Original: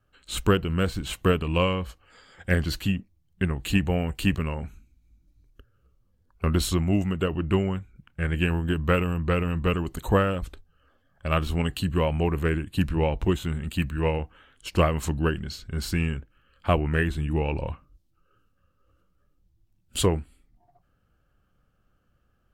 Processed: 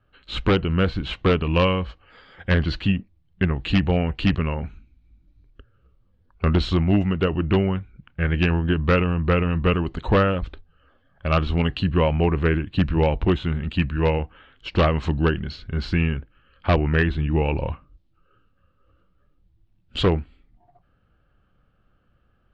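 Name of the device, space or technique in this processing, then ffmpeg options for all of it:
synthesiser wavefolder: -af "aeval=exprs='0.178*(abs(mod(val(0)/0.178+3,4)-2)-1)':channel_layout=same,lowpass=frequency=4000:width=0.5412,lowpass=frequency=4000:width=1.3066,volume=4.5dB"

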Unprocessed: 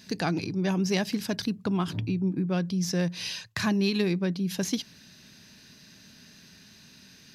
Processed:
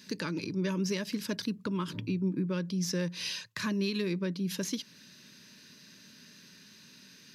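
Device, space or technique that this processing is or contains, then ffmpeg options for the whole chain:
PA system with an anti-feedback notch: -af "highpass=160,asuperstop=centerf=740:order=8:qfactor=3,alimiter=limit=-20.5dB:level=0:latency=1:release=266,volume=-1.5dB"

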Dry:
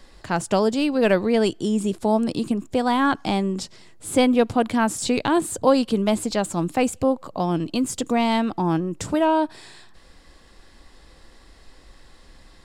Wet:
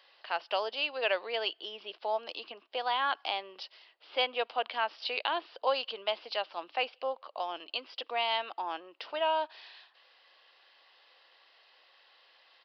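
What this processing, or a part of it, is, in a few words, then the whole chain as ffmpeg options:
musical greeting card: -af "aresample=11025,aresample=44100,highpass=frequency=570:width=0.5412,highpass=frequency=570:width=1.3066,equalizer=frequency=2900:width_type=o:width=0.41:gain=10.5,volume=-8dB"

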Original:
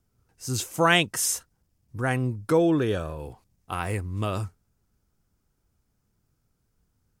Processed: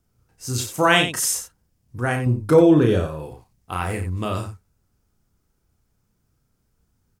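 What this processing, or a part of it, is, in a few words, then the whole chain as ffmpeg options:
slapback doubling: -filter_complex "[0:a]asplit=3[link_01][link_02][link_03];[link_02]adelay=33,volume=-5dB[link_04];[link_03]adelay=90,volume=-9.5dB[link_05];[link_01][link_04][link_05]amix=inputs=3:normalize=0,asettb=1/sr,asplit=3[link_06][link_07][link_08];[link_06]atrim=end=2.264[link_09];[link_07]atrim=start=2.26:end=3.07,asetpts=PTS-STARTPTS,afade=type=in:duration=0.004:curve=qsin,afade=type=out:start_time=0.806:duration=0.004:curve=qsin,lowshelf=frequency=490:gain=6[link_10];[link_08]atrim=start=3.066[link_11];[link_09][link_10]acrossfade=duration=0.004:curve1=hsin:curve2=qsin[link_12];[link_12][link_11]acrossfade=duration=0.004:curve1=qsin:curve2=hsin,volume=2dB"

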